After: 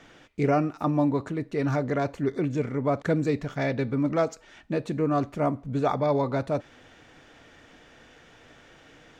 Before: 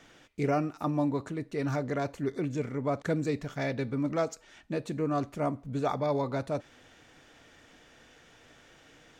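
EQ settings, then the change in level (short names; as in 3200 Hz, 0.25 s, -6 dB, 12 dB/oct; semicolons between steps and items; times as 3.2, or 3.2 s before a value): high shelf 5400 Hz -9 dB; +5.0 dB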